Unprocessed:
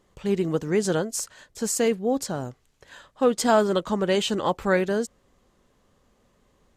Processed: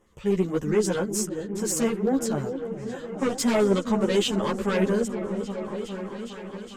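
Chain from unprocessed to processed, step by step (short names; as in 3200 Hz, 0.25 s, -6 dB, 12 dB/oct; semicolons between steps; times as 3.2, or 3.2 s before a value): added harmonics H 4 -17 dB, 5 -13 dB, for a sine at -8 dBFS; LFO notch square 8.2 Hz 730–4300 Hz; on a send: repeats that get brighter 0.41 s, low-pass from 400 Hz, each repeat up 1 oct, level -6 dB; on the sum: ensemble effect; gain -2.5 dB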